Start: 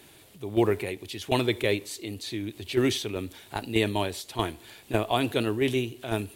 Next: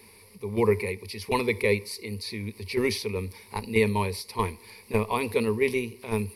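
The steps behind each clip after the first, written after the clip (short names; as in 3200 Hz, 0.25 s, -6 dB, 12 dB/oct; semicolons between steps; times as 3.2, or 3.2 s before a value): ripple EQ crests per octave 0.88, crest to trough 17 dB; gain -2.5 dB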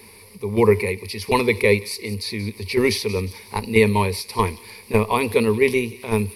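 thin delay 0.179 s, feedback 46%, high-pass 3100 Hz, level -14 dB; gain +7 dB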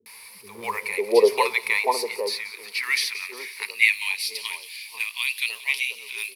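G.711 law mismatch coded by mu; high-pass sweep 480 Hz -> 2900 Hz, 0.37–4.31; three bands offset in time lows, highs, mids 60/550 ms, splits 200/930 Hz; gain -1.5 dB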